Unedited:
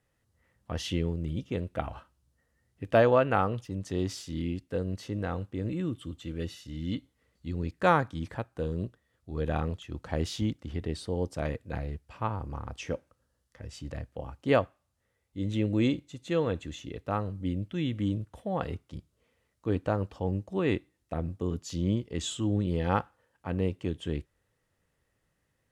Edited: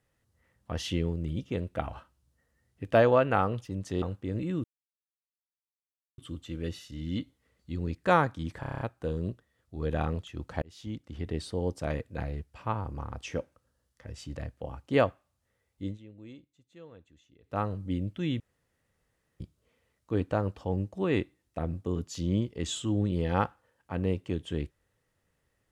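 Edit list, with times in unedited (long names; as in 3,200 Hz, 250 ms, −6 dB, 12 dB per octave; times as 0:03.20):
0:04.02–0:05.32: remove
0:05.94: splice in silence 1.54 s
0:08.36: stutter 0.03 s, 8 plays
0:10.17–0:10.89: fade in
0:15.38–0:17.13: duck −22 dB, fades 0.15 s
0:17.95–0:18.95: fill with room tone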